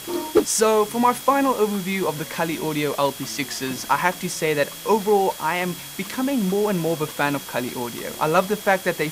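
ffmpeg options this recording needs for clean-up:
-af "adeclick=t=4,bandreject=f=3300:w=30,afwtdn=0.016"

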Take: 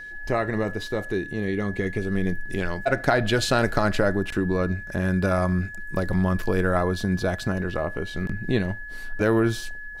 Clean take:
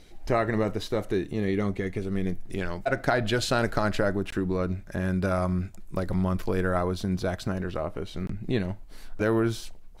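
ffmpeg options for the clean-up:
-af "bandreject=f=1700:w=30,asetnsamples=n=441:p=0,asendcmd='1.73 volume volume -3.5dB',volume=1"

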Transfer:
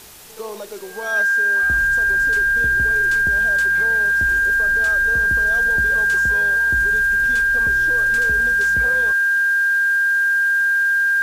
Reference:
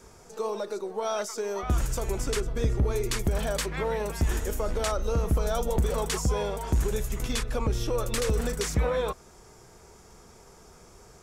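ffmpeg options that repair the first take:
-af "bandreject=f=1600:w=30,afwtdn=0.0089,asetnsamples=n=441:p=0,asendcmd='1.22 volume volume 5dB',volume=1"

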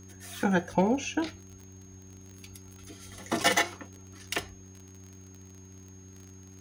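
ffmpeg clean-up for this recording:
-af "adeclick=t=4,bandreject=f=94.9:t=h:w=4,bandreject=f=189.8:t=h:w=4,bandreject=f=284.7:t=h:w=4,bandreject=f=379.6:t=h:w=4,bandreject=f=6500:w=30"

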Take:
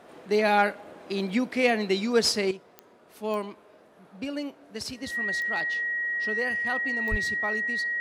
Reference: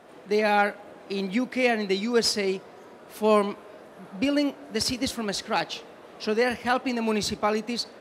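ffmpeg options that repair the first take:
-filter_complex "[0:a]adeclick=t=4,bandreject=f=1900:w=30,asplit=3[s0][s1][s2];[s0]afade=t=out:st=7.1:d=0.02[s3];[s1]highpass=f=140:w=0.5412,highpass=f=140:w=1.3066,afade=t=in:st=7.1:d=0.02,afade=t=out:st=7.22:d=0.02[s4];[s2]afade=t=in:st=7.22:d=0.02[s5];[s3][s4][s5]amix=inputs=3:normalize=0,asetnsamples=n=441:p=0,asendcmd='2.51 volume volume 9dB',volume=1"

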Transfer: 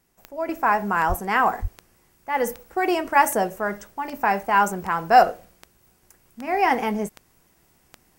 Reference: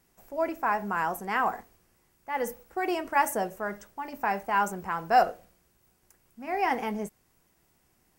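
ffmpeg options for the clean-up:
-filter_complex "[0:a]adeclick=t=4,asplit=3[s0][s1][s2];[s0]afade=t=out:st=1.08:d=0.02[s3];[s1]highpass=f=140:w=0.5412,highpass=f=140:w=1.3066,afade=t=in:st=1.08:d=0.02,afade=t=out:st=1.2:d=0.02[s4];[s2]afade=t=in:st=1.2:d=0.02[s5];[s3][s4][s5]amix=inputs=3:normalize=0,asplit=3[s6][s7][s8];[s6]afade=t=out:st=1.61:d=0.02[s9];[s7]highpass=f=140:w=0.5412,highpass=f=140:w=1.3066,afade=t=in:st=1.61:d=0.02,afade=t=out:st=1.73:d=0.02[s10];[s8]afade=t=in:st=1.73:d=0.02[s11];[s9][s10][s11]amix=inputs=3:normalize=0,asetnsamples=n=441:p=0,asendcmd='0.49 volume volume -7dB',volume=1"

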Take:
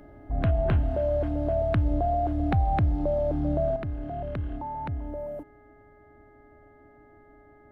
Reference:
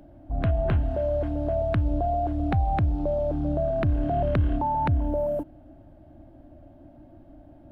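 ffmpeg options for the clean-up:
-af "bandreject=f=416.7:t=h:w=4,bandreject=f=833.4:t=h:w=4,bandreject=f=1250.1:t=h:w=4,bandreject=f=1666.8:t=h:w=4,bandreject=f=2083.5:t=h:w=4,asetnsamples=n=441:p=0,asendcmd='3.76 volume volume 9dB',volume=1"

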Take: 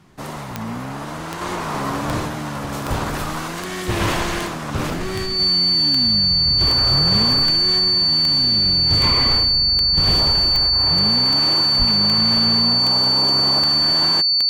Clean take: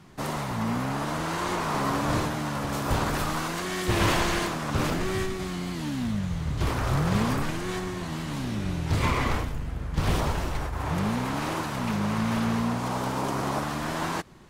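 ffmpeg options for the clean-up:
-filter_complex "[0:a]adeclick=t=4,bandreject=f=4500:w=30,asplit=3[s0][s1][s2];[s0]afade=t=out:st=11.78:d=0.02[s3];[s1]highpass=f=140:w=0.5412,highpass=f=140:w=1.3066,afade=t=in:st=11.78:d=0.02,afade=t=out:st=11.9:d=0.02[s4];[s2]afade=t=in:st=11.9:d=0.02[s5];[s3][s4][s5]amix=inputs=3:normalize=0,asetnsamples=n=441:p=0,asendcmd='1.41 volume volume -3dB',volume=1"

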